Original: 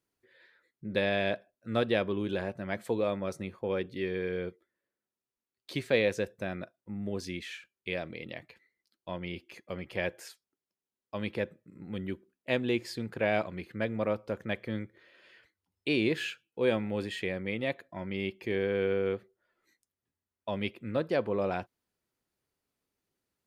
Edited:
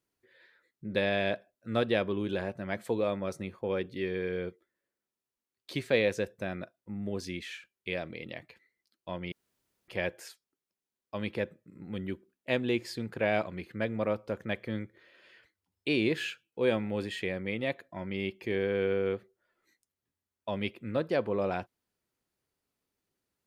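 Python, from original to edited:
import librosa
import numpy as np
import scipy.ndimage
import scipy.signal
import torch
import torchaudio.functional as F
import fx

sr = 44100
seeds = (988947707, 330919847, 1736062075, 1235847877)

y = fx.edit(x, sr, fx.room_tone_fill(start_s=9.32, length_s=0.56), tone=tone)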